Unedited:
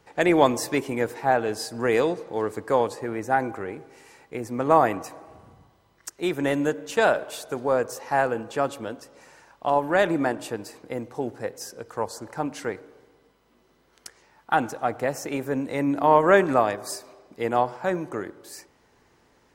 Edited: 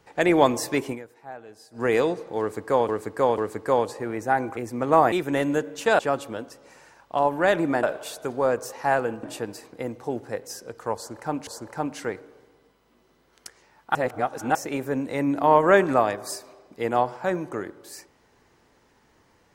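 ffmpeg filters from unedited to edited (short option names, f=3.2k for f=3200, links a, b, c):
-filter_complex "[0:a]asplit=13[a][b][c][d][e][f][g][h][i][j][k][l][m];[a]atrim=end=1.04,asetpts=PTS-STARTPTS,afade=t=out:st=0.91:d=0.13:c=qua:silence=0.11885[n];[b]atrim=start=1.04:end=1.69,asetpts=PTS-STARTPTS,volume=-18.5dB[o];[c]atrim=start=1.69:end=2.892,asetpts=PTS-STARTPTS,afade=t=in:d=0.13:c=qua:silence=0.11885[p];[d]atrim=start=2.398:end=2.892[q];[e]atrim=start=2.398:end=3.592[r];[f]atrim=start=4.348:end=4.902[s];[g]atrim=start=6.228:end=7.102[t];[h]atrim=start=8.498:end=10.342[u];[i]atrim=start=7.098:end=8.502[v];[j]atrim=start=10.338:end=12.582[w];[k]atrim=start=12.068:end=14.552[x];[l]atrim=start=14.548:end=15.152,asetpts=PTS-STARTPTS,areverse[y];[m]atrim=start=15.148[z];[n][o][p]concat=n=3:v=0:a=1[aa];[aa][q]acrossfade=d=0.004:c1=hsin:c2=hsin[ab];[ab][r]acrossfade=d=0.004:c1=hsin:c2=hsin[ac];[ac][s]acrossfade=d=0.004:c1=hsin:c2=hsin[ad];[ad][t]acrossfade=d=0.004:c1=hsin:c2=hsin[ae];[ae][u]acrossfade=d=0.004:c1=hsin:c2=hsin[af];[af][v]acrossfade=d=0.004:c1=hsin:c2=hsin[ag];[ag][w]acrossfade=d=0.004:c1=hsin:c2=hsin[ah];[ah][x]acrossfade=d=0.004:c1=hsin:c2=hsin[ai];[ai][y]acrossfade=d=0.004:c1=hsin:c2=hsin[aj];[aj][z]acrossfade=d=0.004:c1=hsin:c2=hsin"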